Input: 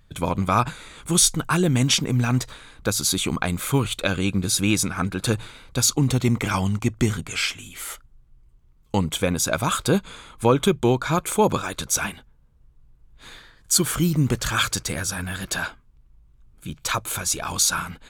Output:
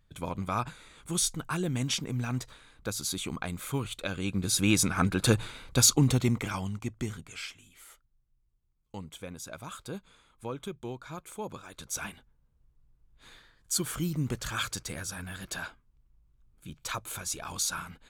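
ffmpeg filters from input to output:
ffmpeg -i in.wav -af "volume=8dB,afade=type=in:start_time=4.16:duration=0.88:silence=0.316228,afade=type=out:start_time=5.83:duration=0.71:silence=0.316228,afade=type=out:start_time=6.54:duration=1.35:silence=0.375837,afade=type=in:start_time=11.64:duration=0.45:silence=0.354813" out.wav

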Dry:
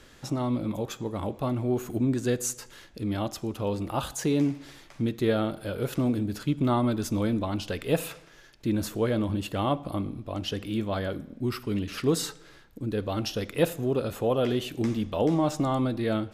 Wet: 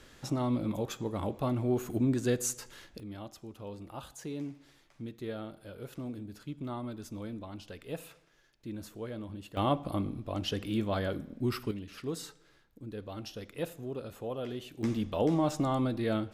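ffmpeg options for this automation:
ffmpeg -i in.wav -af "asetnsamples=nb_out_samples=441:pad=0,asendcmd='3 volume volume -14dB;9.57 volume volume -2dB;11.71 volume volume -12dB;14.83 volume volume -3.5dB',volume=-2.5dB" out.wav

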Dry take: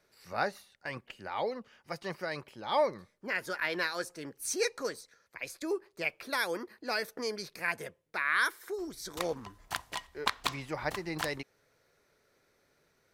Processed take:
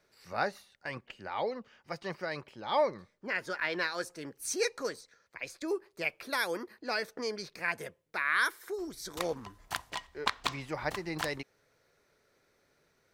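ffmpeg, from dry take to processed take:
ffmpeg -i in.wav -af "asetnsamples=nb_out_samples=441:pad=0,asendcmd='0.94 equalizer g -13.5;3.98 equalizer g -3;4.96 equalizer g -10.5;5.68 equalizer g 0;6.78 equalizer g -11;7.76 equalizer g -0.5;9.9 equalizer g -9.5;10.6 equalizer g -3',equalizer=frequency=12000:width_type=o:width=0.66:gain=-5" out.wav

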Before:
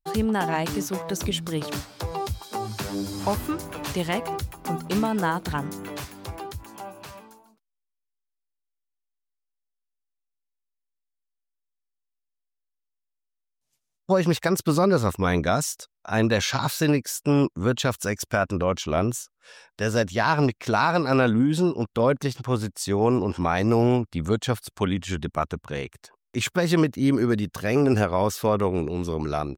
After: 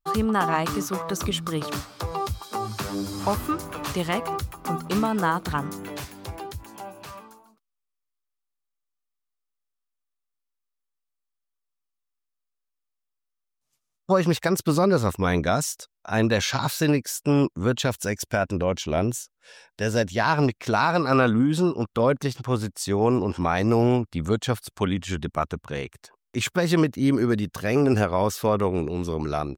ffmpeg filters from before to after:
ffmpeg -i in.wav -af "asetnsamples=nb_out_samples=441:pad=0,asendcmd='1.56 equalizer g 8;5.76 equalizer g -2.5;7.07 equalizer g 9;14.26 equalizer g -1;17.86 equalizer g -9;20.19 equalizer g -0.5;21 equalizer g 7;21.99 equalizer g 0.5',equalizer=frequency=1200:width_type=o:width=0.28:gain=14" out.wav

